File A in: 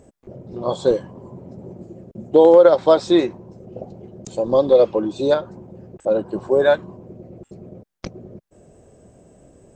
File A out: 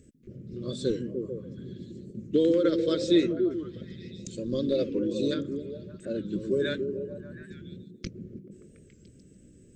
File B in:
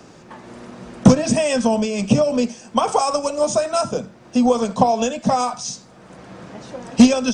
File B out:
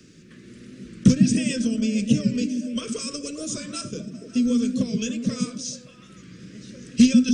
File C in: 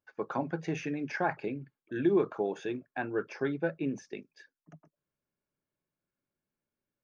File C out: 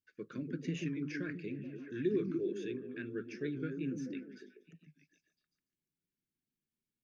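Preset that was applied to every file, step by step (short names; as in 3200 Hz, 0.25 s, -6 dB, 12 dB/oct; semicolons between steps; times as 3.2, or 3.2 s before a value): Butterworth band-stop 820 Hz, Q 0.54; delay with a stepping band-pass 0.144 s, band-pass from 200 Hz, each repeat 0.7 oct, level -1.5 dB; record warp 45 rpm, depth 100 cents; gain -4 dB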